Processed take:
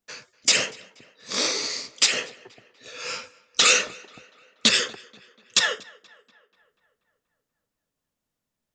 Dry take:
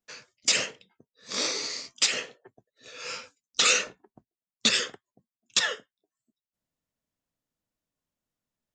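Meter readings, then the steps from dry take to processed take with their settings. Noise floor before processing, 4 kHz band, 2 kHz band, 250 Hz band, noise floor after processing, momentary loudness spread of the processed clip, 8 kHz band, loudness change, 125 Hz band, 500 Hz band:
under -85 dBFS, +4.5 dB, +4.5 dB, +4.5 dB, -84 dBFS, 17 LU, +4.0 dB, +4.0 dB, +4.5 dB, +4.5 dB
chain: tape echo 241 ms, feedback 61%, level -22 dB, low-pass 3.3 kHz; loudspeaker Doppler distortion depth 0.12 ms; trim +4.5 dB

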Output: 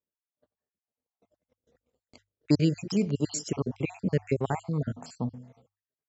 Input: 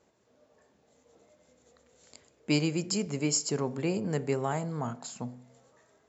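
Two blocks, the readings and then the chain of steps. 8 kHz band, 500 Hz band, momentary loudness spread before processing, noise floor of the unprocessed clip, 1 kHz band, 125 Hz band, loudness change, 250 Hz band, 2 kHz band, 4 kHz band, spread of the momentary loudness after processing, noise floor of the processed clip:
no reading, 0.0 dB, 12 LU, -68 dBFS, -1.5 dB, +4.5 dB, +1.5 dB, +3.0 dB, -3.0 dB, -4.5 dB, 11 LU, under -85 dBFS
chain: random holes in the spectrogram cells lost 51%; low-pass 5.5 kHz 12 dB/octave; bass shelf 270 Hz +7.5 dB; gate -58 dBFS, range -34 dB; hum notches 50/100 Hz; trim +2 dB

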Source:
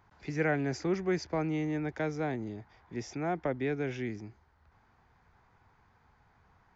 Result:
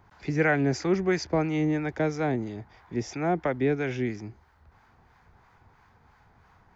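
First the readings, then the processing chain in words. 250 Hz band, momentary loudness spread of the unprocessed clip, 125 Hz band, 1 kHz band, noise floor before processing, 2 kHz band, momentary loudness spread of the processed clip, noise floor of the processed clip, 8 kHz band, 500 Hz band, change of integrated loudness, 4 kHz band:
+6.0 dB, 12 LU, +6.0 dB, +6.0 dB, -67 dBFS, +7.0 dB, 11 LU, -61 dBFS, no reading, +6.0 dB, +6.5 dB, +6.5 dB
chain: harmonic tremolo 3 Hz, depth 50%, crossover 720 Hz; trim +8.5 dB

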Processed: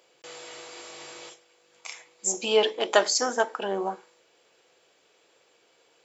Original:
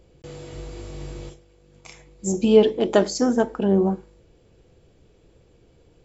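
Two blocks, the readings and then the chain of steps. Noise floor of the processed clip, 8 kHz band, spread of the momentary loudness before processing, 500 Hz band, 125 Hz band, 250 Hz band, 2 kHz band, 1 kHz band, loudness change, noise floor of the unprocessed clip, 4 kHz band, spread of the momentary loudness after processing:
-64 dBFS, no reading, 21 LU, -6.0 dB, under -20 dB, -17.0 dB, +5.0 dB, +2.0 dB, -5.0 dB, -57 dBFS, +5.5 dB, 20 LU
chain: high-pass 900 Hz 12 dB/octave; trim +5.5 dB

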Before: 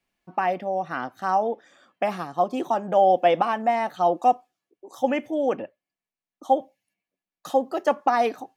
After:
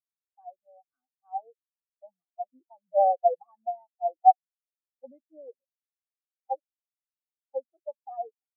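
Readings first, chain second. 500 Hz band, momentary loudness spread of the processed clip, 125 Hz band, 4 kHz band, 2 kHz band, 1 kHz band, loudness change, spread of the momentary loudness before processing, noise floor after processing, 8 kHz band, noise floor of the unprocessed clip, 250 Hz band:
-8.5 dB, 19 LU, under -40 dB, under -40 dB, under -40 dB, -4.5 dB, -3.5 dB, 10 LU, under -85 dBFS, no reading, under -85 dBFS, under -30 dB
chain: spectral contrast expander 4:1

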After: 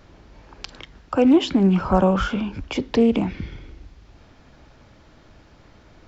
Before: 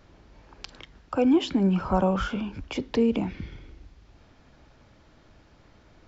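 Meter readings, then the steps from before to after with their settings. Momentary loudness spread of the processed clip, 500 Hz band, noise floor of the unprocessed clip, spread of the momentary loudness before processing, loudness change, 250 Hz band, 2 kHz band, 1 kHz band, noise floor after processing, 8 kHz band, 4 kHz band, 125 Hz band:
22 LU, +5.5 dB, -57 dBFS, 22 LU, +5.5 dB, +5.5 dB, +5.5 dB, +5.0 dB, -52 dBFS, no reading, +5.5 dB, +5.5 dB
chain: loudspeaker Doppler distortion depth 0.14 ms; trim +5.5 dB

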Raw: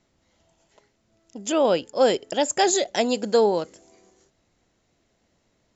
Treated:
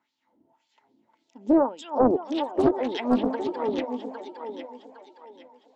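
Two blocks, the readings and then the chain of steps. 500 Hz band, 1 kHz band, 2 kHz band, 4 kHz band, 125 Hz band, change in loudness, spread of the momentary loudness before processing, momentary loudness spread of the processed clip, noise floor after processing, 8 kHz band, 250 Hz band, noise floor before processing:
-4.0 dB, -2.5 dB, -8.5 dB, -11.5 dB, +0.5 dB, -3.5 dB, 7 LU, 16 LU, -75 dBFS, no reading, +4.5 dB, -70 dBFS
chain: low-pass that closes with the level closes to 580 Hz, closed at -15 dBFS; peaking EQ 120 Hz +6.5 dB 0.41 oct; ever faster or slower copies 400 ms, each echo +1 st, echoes 3, each echo -6 dB; small resonant body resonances 260/890 Hz, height 17 dB, ringing for 50 ms; LFO band-pass sine 1.8 Hz 300–4000 Hz; thinning echo 809 ms, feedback 38%, high-pass 480 Hz, level -5.5 dB; loudspeaker Doppler distortion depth 0.72 ms

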